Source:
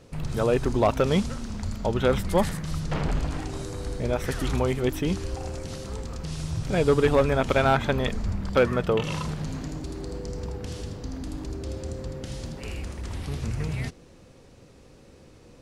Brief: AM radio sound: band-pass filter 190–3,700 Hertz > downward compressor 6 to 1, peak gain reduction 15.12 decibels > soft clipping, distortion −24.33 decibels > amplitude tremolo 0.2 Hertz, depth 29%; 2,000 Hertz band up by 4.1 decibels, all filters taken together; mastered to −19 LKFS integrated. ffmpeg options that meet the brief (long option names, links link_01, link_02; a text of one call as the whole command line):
ffmpeg -i in.wav -af "highpass=190,lowpass=3700,equalizer=frequency=2000:width_type=o:gain=6,acompressor=threshold=-30dB:ratio=6,asoftclip=threshold=-19.5dB,tremolo=f=0.2:d=0.29,volume=19dB" out.wav